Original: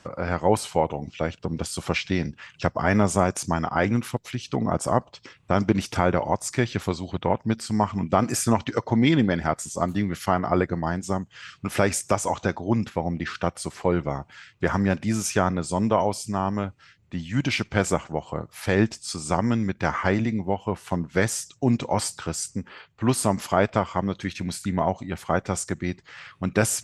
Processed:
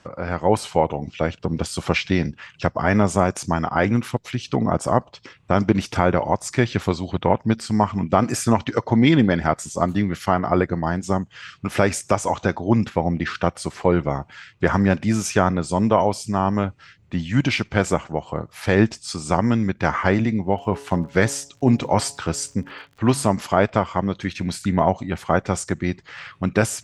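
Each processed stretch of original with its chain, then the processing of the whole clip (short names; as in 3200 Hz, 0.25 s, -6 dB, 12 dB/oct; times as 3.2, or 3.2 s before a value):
20.53–23.27 de-hum 140.1 Hz, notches 7 + crackle 87/s -44 dBFS
whole clip: AGC gain up to 7 dB; high shelf 8100 Hz -9 dB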